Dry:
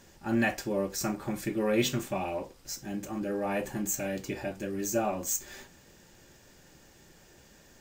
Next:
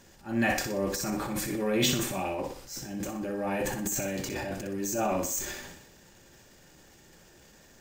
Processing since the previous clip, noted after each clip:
transient designer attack −8 dB, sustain +10 dB
feedback echo with a high-pass in the loop 61 ms, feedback 40%, high-pass 170 Hz, level −8 dB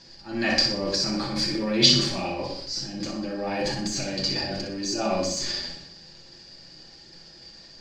low-pass with resonance 4,700 Hz, resonance Q 15
on a send at −1 dB: convolution reverb RT60 0.60 s, pre-delay 6 ms
on the sum: level −1 dB

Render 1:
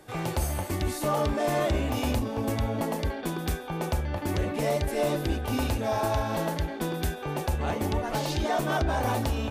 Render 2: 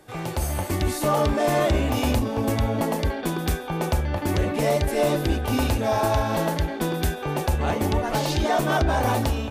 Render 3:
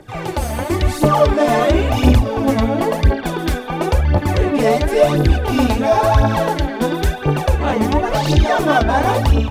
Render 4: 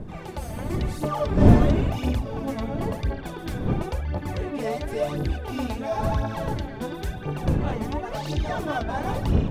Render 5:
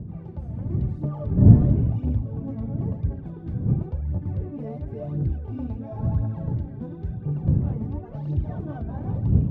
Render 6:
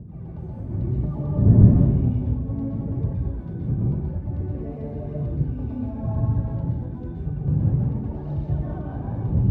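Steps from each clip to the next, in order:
automatic gain control gain up to 5 dB
high-shelf EQ 6,900 Hz −10.5 dB; phase shifter 0.96 Hz, delay 4.7 ms, feedback 61%; level +5.5 dB
wind on the microphone 190 Hz −13 dBFS; level −13.5 dB
reversed playback; upward compression, threshold −31 dBFS; reversed playback; resonant band-pass 120 Hz, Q 1.5; level +6 dB
dense smooth reverb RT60 0.85 s, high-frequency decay 0.7×, pre-delay 110 ms, DRR −4 dB; level −4 dB

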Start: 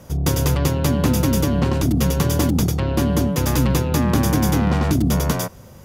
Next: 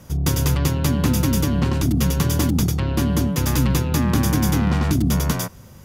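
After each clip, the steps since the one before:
parametric band 570 Hz −6 dB 1.3 octaves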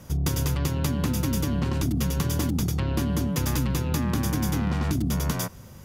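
downward compressor, threshold −20 dBFS, peak gain reduction 7 dB
level −1.5 dB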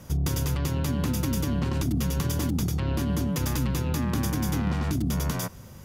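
brickwall limiter −18 dBFS, peak gain reduction 4.5 dB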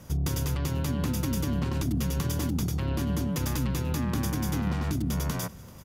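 single-tap delay 388 ms −22 dB
level −2 dB

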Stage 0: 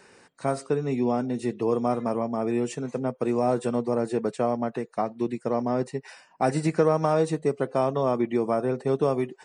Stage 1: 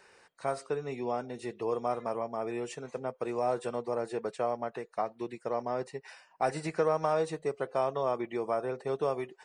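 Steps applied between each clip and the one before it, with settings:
octave-band graphic EQ 125/250/8,000 Hz −7/−11/−4 dB
level −3.5 dB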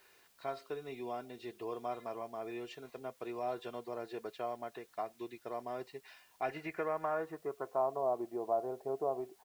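comb filter 2.9 ms, depth 43%
low-pass filter sweep 3,800 Hz → 770 Hz, 0:06.16–0:08.04
bit-depth reduction 10 bits, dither triangular
level −9 dB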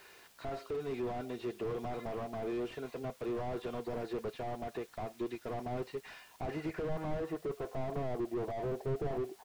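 slew-rate limiting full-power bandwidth 3.3 Hz
level +8.5 dB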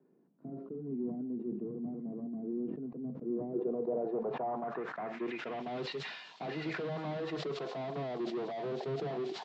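Chebyshev band-pass filter 140–7,500 Hz, order 5
low-pass filter sweep 250 Hz → 3,900 Hz, 0:03.22–0:05.81
level that may fall only so fast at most 51 dB per second

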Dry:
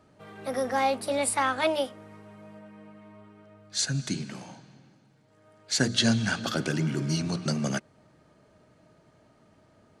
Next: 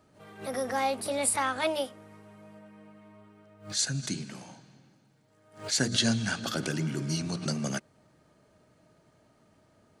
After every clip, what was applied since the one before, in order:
high-shelf EQ 7,300 Hz +8 dB
background raised ahead of every attack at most 150 dB per second
level −3.5 dB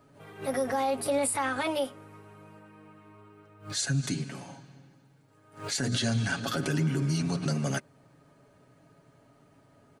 parametric band 5,400 Hz −5 dB 1.6 octaves
comb filter 7.2 ms, depth 60%
brickwall limiter −22 dBFS, peak gain reduction 11 dB
level +2.5 dB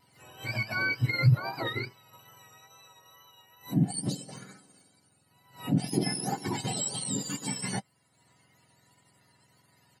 frequency axis turned over on the octave scale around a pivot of 1,100 Hz
transient designer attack −1 dB, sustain −6 dB
tape wow and flutter 29 cents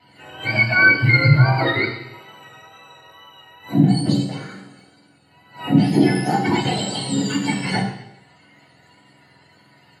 convolution reverb RT60 0.85 s, pre-delay 3 ms, DRR −3 dB
level −1 dB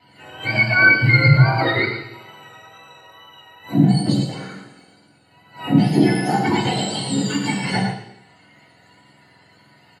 single-tap delay 111 ms −8.5 dB

